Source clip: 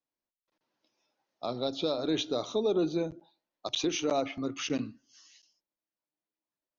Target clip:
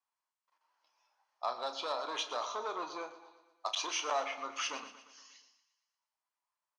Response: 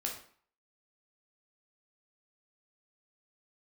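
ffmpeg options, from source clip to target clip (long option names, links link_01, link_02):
-filter_complex "[0:a]bandreject=frequency=3700:width=8.4,aeval=exprs='(tanh(15.8*val(0)+0.15)-tanh(0.15))/15.8':channel_layout=same,highpass=frequency=990:width_type=q:width=3.5,asplit=2[link_01][link_02];[link_02]adelay=33,volume=-11dB[link_03];[link_01][link_03]amix=inputs=2:normalize=0,aecho=1:1:117|234|351|468|585|702:0.2|0.11|0.0604|0.0332|0.0183|0.01,asplit=2[link_04][link_05];[1:a]atrim=start_sample=2205,atrim=end_sample=3087,asetrate=40572,aresample=44100[link_06];[link_05][link_06]afir=irnorm=-1:irlink=0,volume=-13dB[link_07];[link_04][link_07]amix=inputs=2:normalize=0,volume=-2dB" -ar 22050 -c:a aac -b:a 64k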